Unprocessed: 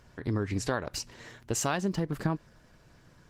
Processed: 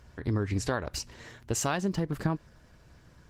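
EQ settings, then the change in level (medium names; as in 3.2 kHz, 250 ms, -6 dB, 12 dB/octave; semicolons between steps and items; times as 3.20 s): peaking EQ 66 Hz +9 dB 0.79 oct; 0.0 dB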